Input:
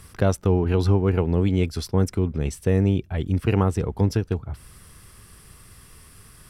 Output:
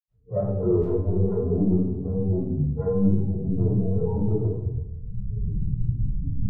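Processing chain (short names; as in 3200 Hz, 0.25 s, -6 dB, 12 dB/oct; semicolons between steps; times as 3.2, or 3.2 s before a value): recorder AGC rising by 27 dB/s; steep low-pass 1100 Hz 96 dB/oct; low shelf 67 Hz -10 dB; de-hum 55.03 Hz, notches 14; sample leveller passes 3; loudest bins only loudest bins 4; flange 1.9 Hz, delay 5.1 ms, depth 2.4 ms, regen -86%; soft clip -15 dBFS, distortion -20 dB; 0.72–1.63 fade in logarithmic; 3.61–4.1 flutter echo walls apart 4 m, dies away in 0.25 s; reverb RT60 1.0 s, pre-delay 80 ms; gain -5 dB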